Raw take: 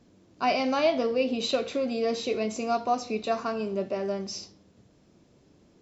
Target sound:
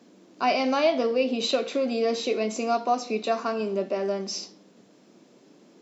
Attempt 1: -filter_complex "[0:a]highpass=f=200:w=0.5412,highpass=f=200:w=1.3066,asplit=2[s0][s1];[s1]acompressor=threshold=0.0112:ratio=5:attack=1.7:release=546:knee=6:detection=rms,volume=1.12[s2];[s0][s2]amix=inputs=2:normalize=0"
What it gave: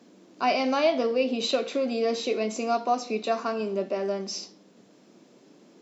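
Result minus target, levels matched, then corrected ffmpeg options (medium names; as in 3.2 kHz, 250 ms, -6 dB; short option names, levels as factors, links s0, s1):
compression: peak gain reduction +5 dB
-filter_complex "[0:a]highpass=f=200:w=0.5412,highpass=f=200:w=1.3066,asplit=2[s0][s1];[s1]acompressor=threshold=0.0224:ratio=5:attack=1.7:release=546:knee=6:detection=rms,volume=1.12[s2];[s0][s2]amix=inputs=2:normalize=0"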